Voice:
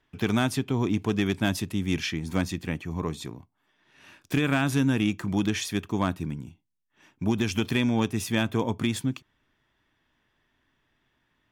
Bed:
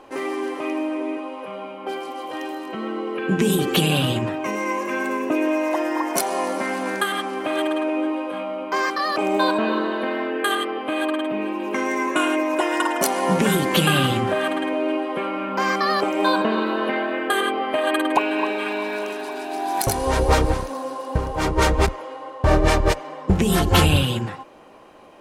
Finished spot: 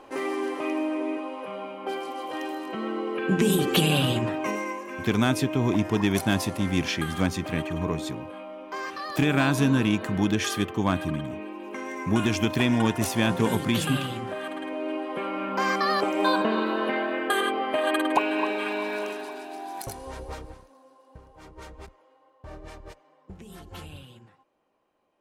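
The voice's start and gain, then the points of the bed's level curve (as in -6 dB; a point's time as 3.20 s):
4.85 s, +1.5 dB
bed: 4.51 s -2.5 dB
4.82 s -11.5 dB
14.43 s -11.5 dB
15.44 s -3.5 dB
19.06 s -3.5 dB
20.72 s -26 dB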